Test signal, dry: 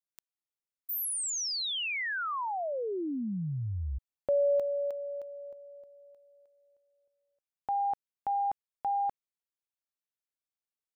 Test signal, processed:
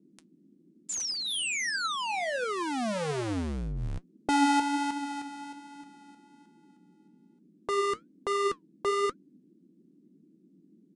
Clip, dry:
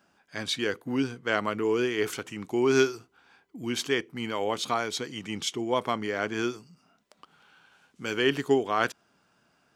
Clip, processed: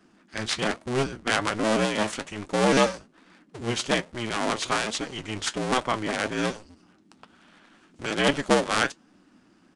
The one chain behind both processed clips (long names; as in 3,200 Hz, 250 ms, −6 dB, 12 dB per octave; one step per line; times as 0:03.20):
sub-harmonics by changed cycles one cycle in 2, inverted
flanger 1.2 Hz, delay 3 ms, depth 6.5 ms, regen +68%
downsampling to 22,050 Hz
noise in a band 170–340 Hz −67 dBFS
level +6.5 dB